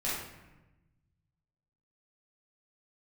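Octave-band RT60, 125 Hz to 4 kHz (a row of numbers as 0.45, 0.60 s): 2.2, 1.5, 1.1, 1.0, 1.0, 0.70 s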